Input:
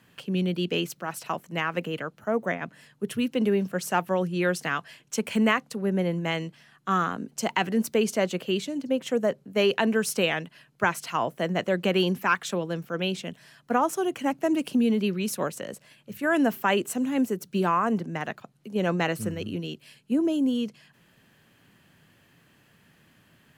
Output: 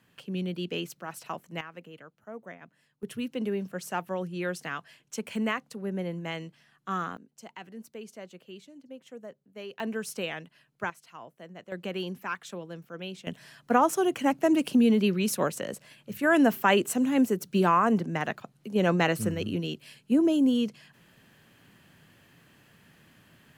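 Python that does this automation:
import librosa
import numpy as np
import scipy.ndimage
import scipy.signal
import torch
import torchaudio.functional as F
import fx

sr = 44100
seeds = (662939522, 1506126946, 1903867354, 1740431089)

y = fx.gain(x, sr, db=fx.steps((0.0, -6.0), (1.61, -16.0), (3.03, -7.0), (7.17, -19.0), (9.8, -9.0), (10.9, -19.0), (11.72, -10.5), (13.27, 1.5)))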